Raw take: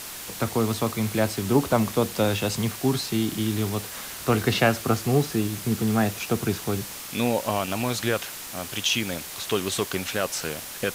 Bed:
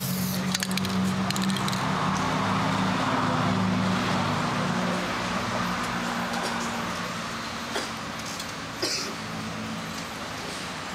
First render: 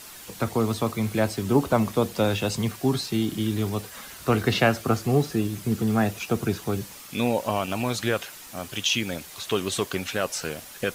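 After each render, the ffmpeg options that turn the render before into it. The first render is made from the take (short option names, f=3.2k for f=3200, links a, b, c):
-af "afftdn=nr=8:nf=-38"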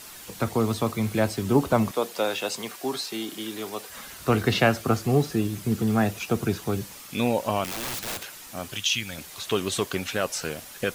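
-filter_complex "[0:a]asettb=1/sr,asplit=3[a][b][c];[a]atrim=end=1.914[d];[b]atrim=start=1.91:end=3.9,asetpts=PTS-STARTPTS,afade=t=in:d=0.004:c=qsin,afade=t=out:st=1.986:d=0.004:c=qsin,highpass=420[e];[c]atrim=start=3.896[f];[d][e]acrossfade=d=0.004:c1=hsin:c2=qsin[g];[g][f]acrossfade=d=0.004:c1=qsin:c2=hsin,asettb=1/sr,asplit=3[h][i][j];[h]atrim=end=7.644[k];[i]atrim=start=7.64:end=8.24,asetpts=PTS-STARTPTS,afade=t=in:d=0.004:c=qsin,afade=t=out:st=0.596:d=0.004:c=qsin,aeval=exprs='(mod(21.1*val(0)+1,2)-1)/21.1':c=same[l];[j]atrim=start=8.236[m];[k][l]acrossfade=d=0.004:c1=hsin:c2=qsin[n];[n][m]acrossfade=d=0.004:c1=qsin:c2=hsin,asettb=1/sr,asplit=3[o][p][q];[o]atrim=end=8.774[r];[p]atrim=start=8.77:end=9.18,asetpts=PTS-STARTPTS,afade=t=in:d=0.004:c=qsin,afade=t=out:st=0.406:d=0.004:c=qsin,equalizer=f=380:w=0.62:g=-13[s];[q]atrim=start=9.176[t];[r][s]acrossfade=d=0.004:c1=hsin:c2=qsin[u];[u][t]acrossfade=d=0.004:c1=qsin:c2=hsin"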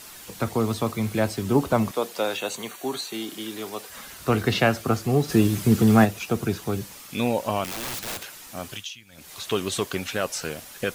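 -filter_complex "[0:a]asettb=1/sr,asplit=3[a][b][c];[a]atrim=end=2.374[d];[b]atrim=start=2.37:end=3.14,asetpts=PTS-STARTPTS,afade=t=in:d=0.004:c=qsin,afade=t=out:st=0.766:d=0.004:c=qsin,asuperstop=centerf=5100:order=20:qfactor=7[e];[c]atrim=start=3.136[f];[d][e]acrossfade=d=0.004:c1=hsin:c2=qsin[g];[g][f]acrossfade=d=0.004:c1=qsin:c2=hsin,asplit=3[h][i][j];[h]afade=t=out:st=5.28:d=0.02[k];[i]acontrast=77,afade=t=in:st=5.28:d=0.02,afade=t=out:st=6.04:d=0.02[l];[j]afade=t=in:st=6.04:d=0.02[m];[k][l][m]amix=inputs=3:normalize=0,asplit=3[n][o][p];[n]atrim=end=8.99,asetpts=PTS-STARTPTS,afade=t=out:st=8.72:d=0.27:c=qua:silence=0.11885[q];[o]atrim=start=8.99:end=9.04,asetpts=PTS-STARTPTS,volume=-18.5dB[r];[p]atrim=start=9.04,asetpts=PTS-STARTPTS,afade=t=in:d=0.27:c=qua:silence=0.11885[s];[q][r][s]concat=n=3:v=0:a=1"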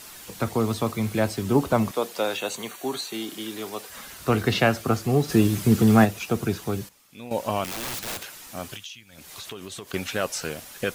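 -filter_complex "[0:a]asettb=1/sr,asplit=3[a][b][c];[a]atrim=end=8.754[d];[b]atrim=start=8.75:end=9.94,asetpts=PTS-STARTPTS,afade=t=in:d=0.004:c=qsin,afade=t=out:st=1.186:d=0.004:c=qsin,acompressor=threshold=-34dB:ratio=6:attack=3.2:release=140:knee=1:detection=peak[e];[c]atrim=start=9.936[f];[d][e]acrossfade=d=0.004:c1=hsin:c2=qsin[g];[g][f]acrossfade=d=0.004:c1=qsin:c2=hsin,asplit=3[h][i][j];[h]atrim=end=6.89,asetpts=PTS-STARTPTS,afade=t=out:st=6.44:d=0.45:c=log:silence=0.16788[k];[i]atrim=start=6.89:end=7.31,asetpts=PTS-STARTPTS,volume=-15.5dB[l];[j]atrim=start=7.31,asetpts=PTS-STARTPTS,afade=t=in:d=0.45:c=log:silence=0.16788[m];[k][l][m]concat=n=3:v=0:a=1"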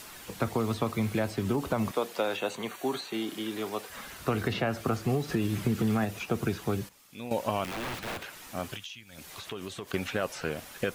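-filter_complex "[0:a]alimiter=limit=-13.5dB:level=0:latency=1:release=116,acrossover=split=1500|3200[a][b][c];[a]acompressor=threshold=-25dB:ratio=4[d];[b]acompressor=threshold=-38dB:ratio=4[e];[c]acompressor=threshold=-48dB:ratio=4[f];[d][e][f]amix=inputs=3:normalize=0"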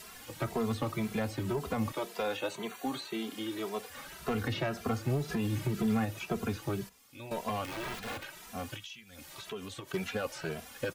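-filter_complex "[0:a]asoftclip=type=hard:threshold=-22.5dB,asplit=2[a][b];[b]adelay=2.6,afreqshift=1.9[c];[a][c]amix=inputs=2:normalize=1"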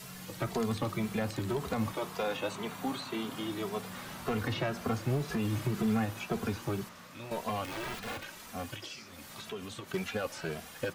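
-filter_complex "[1:a]volume=-20.5dB[a];[0:a][a]amix=inputs=2:normalize=0"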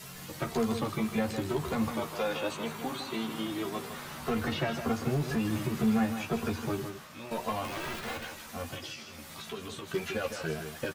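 -filter_complex "[0:a]asplit=2[a][b];[b]adelay=13,volume=-4dB[c];[a][c]amix=inputs=2:normalize=0,asplit=2[d][e];[e]aecho=0:1:158:0.376[f];[d][f]amix=inputs=2:normalize=0"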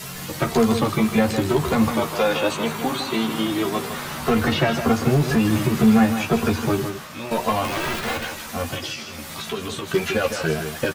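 -af "volume=11.5dB"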